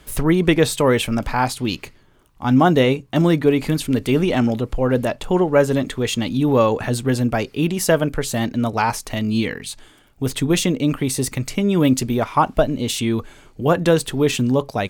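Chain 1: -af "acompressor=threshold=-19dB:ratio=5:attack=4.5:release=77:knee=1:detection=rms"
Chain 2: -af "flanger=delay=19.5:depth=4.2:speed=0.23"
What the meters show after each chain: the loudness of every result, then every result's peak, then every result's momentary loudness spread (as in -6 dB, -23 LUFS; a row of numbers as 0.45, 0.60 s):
-24.5, -22.5 LUFS; -10.5, -4.5 dBFS; 4, 8 LU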